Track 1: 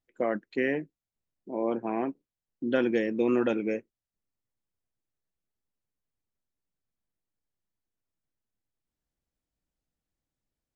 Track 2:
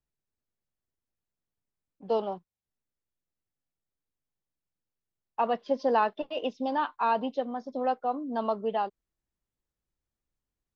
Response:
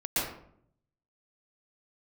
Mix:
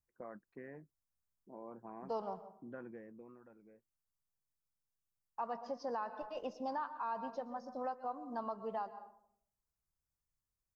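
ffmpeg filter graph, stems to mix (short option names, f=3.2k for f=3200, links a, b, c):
-filter_complex "[0:a]lowpass=1.9k,acompressor=threshold=-33dB:ratio=2,volume=-9dB,afade=t=out:st=2.88:d=0.51:silence=0.251189[a];[1:a]highshelf=f=3.6k:g=10,volume=-4dB,asplit=2[b][c];[c]volume=-22.5dB[d];[2:a]atrim=start_sample=2205[e];[d][e]afir=irnorm=-1:irlink=0[f];[a][b][f]amix=inputs=3:normalize=0,firequalizer=gain_entry='entry(130,0);entry(280,-10);entry(1100,0);entry(3300,-22);entry(4900,-6)':delay=0.05:min_phase=1,alimiter=level_in=6dB:limit=-24dB:level=0:latency=1:release=244,volume=-6dB"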